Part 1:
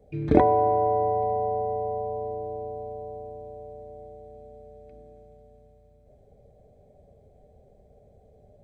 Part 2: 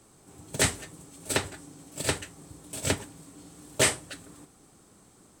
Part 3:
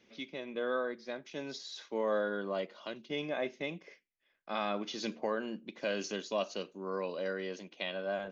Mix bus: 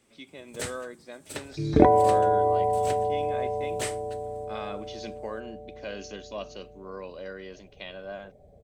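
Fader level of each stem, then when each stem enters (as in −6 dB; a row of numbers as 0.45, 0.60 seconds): +1.0, −11.0, −3.0 decibels; 1.45, 0.00, 0.00 seconds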